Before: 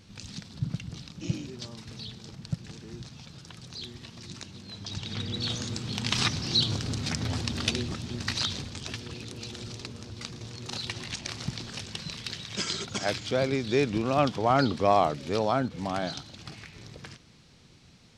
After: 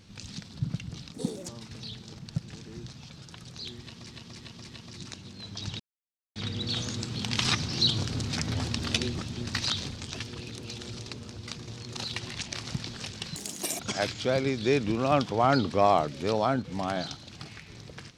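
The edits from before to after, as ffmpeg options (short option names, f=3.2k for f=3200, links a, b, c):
-filter_complex "[0:a]asplit=9[a][b][c][d][e][f][g][h][i];[a]atrim=end=1.144[j];[b]atrim=start=1.14:end=1.65,asetpts=PTS-STARTPTS,asetrate=64827,aresample=44100[k];[c]atrim=start=1.646:end=4.262[l];[d]atrim=start=3.968:end=4.262[m];[e]atrim=start=3.968:end=4.262[n];[f]atrim=start=3.968:end=5.09,asetpts=PTS-STARTPTS,afade=t=out:st=1.118:d=0.004:c=hsin,apad=pad_dur=0.56[o];[g]atrim=start=5.09:end=12.094,asetpts=PTS-STARTPTS,afade=t=in:d=0.004:c=hsin[p];[h]atrim=start=12.09:end=12.86,asetpts=PTS-STARTPTS,asetrate=77175,aresample=44100[q];[i]atrim=start=12.856[r];[j][k]acrossfade=d=0.004:c1=hsin:c2=hsin[s];[s][l]acrossfade=d=0.004:c1=hsin:c2=hsin[t];[t][m]acrossfade=d=0.004:c1=hsin:c2=hsin[u];[u][n]acrossfade=d=0.004:c1=hsin:c2=hsin[v];[o][p]concat=n=2:v=0:a=1[w];[v][w]acrossfade=d=0.004:c1=hsin:c2=hsin[x];[x][q]acrossfade=d=0.004:c1=hsin:c2=hsin[y];[y][r]acrossfade=d=0.004:c1=hsin:c2=hsin"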